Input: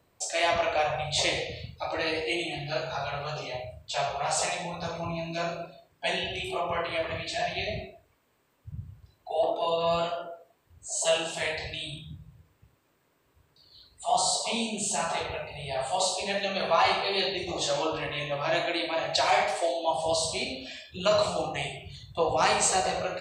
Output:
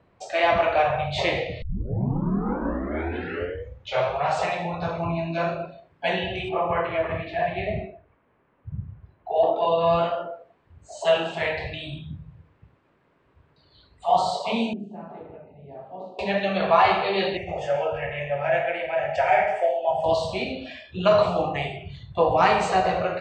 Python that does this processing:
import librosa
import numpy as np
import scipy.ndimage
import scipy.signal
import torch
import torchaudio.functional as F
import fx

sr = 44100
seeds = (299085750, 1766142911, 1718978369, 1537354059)

y = fx.lowpass(x, sr, hz=2400.0, slope=12, at=(6.49, 9.36))
y = fx.bandpass_q(y, sr, hz=270.0, q=2.9, at=(14.73, 16.19))
y = fx.fixed_phaser(y, sr, hz=1100.0, stages=6, at=(17.37, 20.04))
y = fx.edit(y, sr, fx.tape_start(start_s=1.62, length_s=2.62), tone=tone)
y = scipy.signal.sosfilt(scipy.signal.butter(2, 2300.0, 'lowpass', fs=sr, output='sos'), y)
y = fx.peak_eq(y, sr, hz=190.0, db=4.5, octaves=0.28)
y = y * librosa.db_to_amplitude(6.0)